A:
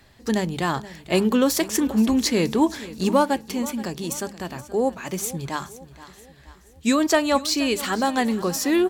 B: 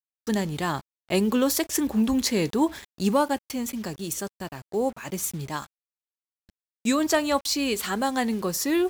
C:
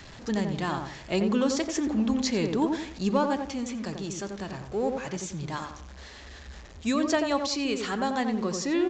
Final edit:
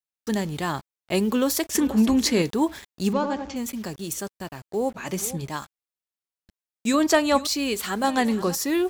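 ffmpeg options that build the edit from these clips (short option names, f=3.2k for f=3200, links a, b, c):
-filter_complex "[0:a]asplit=4[a][b][c][d];[1:a]asplit=6[e][f][g][h][i][j];[e]atrim=end=1.752[k];[a]atrim=start=1.748:end=2.422[l];[f]atrim=start=2.418:end=3.132[m];[2:a]atrim=start=3.128:end=3.562[n];[g]atrim=start=3.558:end=4.96[o];[b]atrim=start=4.94:end=5.46[p];[h]atrim=start=5.44:end=6.942[q];[c]atrim=start=6.938:end=7.472[r];[i]atrim=start=7.468:end=8.042[s];[d]atrim=start=8.038:end=8.552[t];[j]atrim=start=8.548[u];[k][l]acrossfade=d=0.004:c1=hsin:c2=hsin[v];[v][m]acrossfade=d=0.004:c1=hsin:c2=hsin[w];[w][n]acrossfade=d=0.004:c1=hsin:c2=hsin[x];[x][o]acrossfade=d=0.004:c1=hsin:c2=hsin[y];[y][p]acrossfade=d=0.02:c1=tri:c2=tri[z];[z][q]acrossfade=d=0.02:c1=tri:c2=tri[aa];[aa][r]acrossfade=d=0.004:c1=hsin:c2=hsin[ab];[ab][s]acrossfade=d=0.004:c1=hsin:c2=hsin[ac];[ac][t]acrossfade=d=0.004:c1=hsin:c2=hsin[ad];[ad][u]acrossfade=d=0.004:c1=hsin:c2=hsin"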